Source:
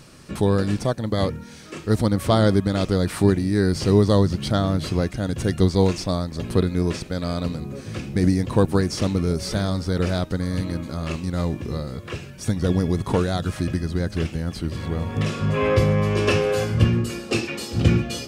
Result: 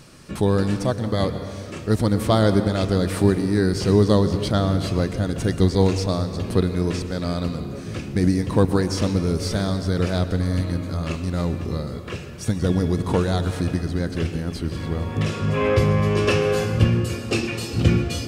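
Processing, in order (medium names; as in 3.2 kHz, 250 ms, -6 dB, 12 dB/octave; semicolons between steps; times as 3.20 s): on a send: reverberation RT60 2.5 s, pre-delay 107 ms, DRR 10 dB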